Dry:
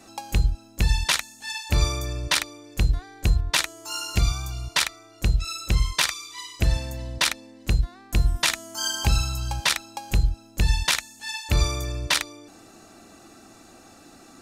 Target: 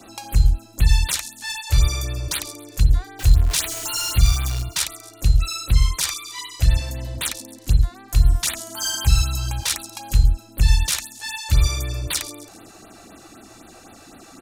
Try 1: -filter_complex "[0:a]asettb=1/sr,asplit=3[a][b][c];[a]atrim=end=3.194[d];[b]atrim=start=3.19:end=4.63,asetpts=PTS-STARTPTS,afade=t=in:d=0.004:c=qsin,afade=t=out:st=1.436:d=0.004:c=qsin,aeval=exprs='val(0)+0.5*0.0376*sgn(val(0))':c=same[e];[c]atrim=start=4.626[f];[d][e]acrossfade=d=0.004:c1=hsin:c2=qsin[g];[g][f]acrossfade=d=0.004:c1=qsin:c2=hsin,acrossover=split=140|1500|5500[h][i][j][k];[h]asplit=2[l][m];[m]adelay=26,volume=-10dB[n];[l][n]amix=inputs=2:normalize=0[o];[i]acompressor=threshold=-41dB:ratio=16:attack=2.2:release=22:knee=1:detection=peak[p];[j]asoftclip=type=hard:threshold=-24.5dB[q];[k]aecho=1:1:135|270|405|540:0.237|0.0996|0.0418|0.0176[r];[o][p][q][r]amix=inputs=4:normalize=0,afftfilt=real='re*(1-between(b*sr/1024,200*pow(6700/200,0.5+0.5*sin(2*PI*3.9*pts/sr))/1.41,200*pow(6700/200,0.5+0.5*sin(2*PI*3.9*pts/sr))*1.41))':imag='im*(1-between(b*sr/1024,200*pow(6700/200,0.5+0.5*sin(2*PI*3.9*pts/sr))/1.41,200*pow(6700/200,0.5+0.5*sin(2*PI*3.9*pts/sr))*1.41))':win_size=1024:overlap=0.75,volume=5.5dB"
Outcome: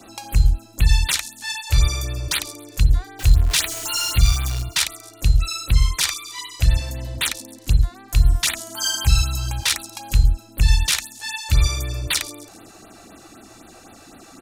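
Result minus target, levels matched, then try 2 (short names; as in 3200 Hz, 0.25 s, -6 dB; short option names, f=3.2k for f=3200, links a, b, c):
hard clip: distortion -6 dB
-filter_complex "[0:a]asettb=1/sr,asplit=3[a][b][c];[a]atrim=end=3.194[d];[b]atrim=start=3.19:end=4.63,asetpts=PTS-STARTPTS,afade=t=in:d=0.004:c=qsin,afade=t=out:st=1.436:d=0.004:c=qsin,aeval=exprs='val(0)+0.5*0.0376*sgn(val(0))':c=same[e];[c]atrim=start=4.626[f];[d][e]acrossfade=d=0.004:c1=hsin:c2=qsin[g];[g][f]acrossfade=d=0.004:c1=qsin:c2=hsin,acrossover=split=140|1500|5500[h][i][j][k];[h]asplit=2[l][m];[m]adelay=26,volume=-10dB[n];[l][n]amix=inputs=2:normalize=0[o];[i]acompressor=threshold=-41dB:ratio=16:attack=2.2:release=22:knee=1:detection=peak[p];[j]asoftclip=type=hard:threshold=-33.5dB[q];[k]aecho=1:1:135|270|405|540:0.237|0.0996|0.0418|0.0176[r];[o][p][q][r]amix=inputs=4:normalize=0,afftfilt=real='re*(1-between(b*sr/1024,200*pow(6700/200,0.5+0.5*sin(2*PI*3.9*pts/sr))/1.41,200*pow(6700/200,0.5+0.5*sin(2*PI*3.9*pts/sr))*1.41))':imag='im*(1-between(b*sr/1024,200*pow(6700/200,0.5+0.5*sin(2*PI*3.9*pts/sr))/1.41,200*pow(6700/200,0.5+0.5*sin(2*PI*3.9*pts/sr))*1.41))':win_size=1024:overlap=0.75,volume=5.5dB"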